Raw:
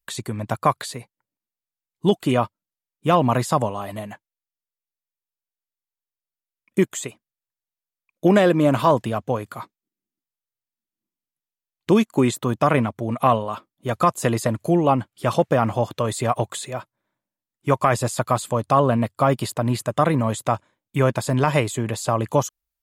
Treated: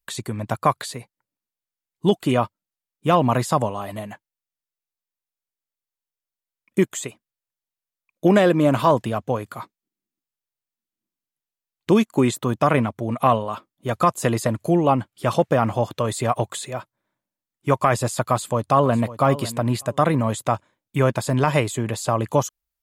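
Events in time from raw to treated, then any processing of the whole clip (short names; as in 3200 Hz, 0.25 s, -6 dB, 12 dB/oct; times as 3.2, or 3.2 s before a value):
18.27–19.06 echo throw 0.55 s, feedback 15%, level -15 dB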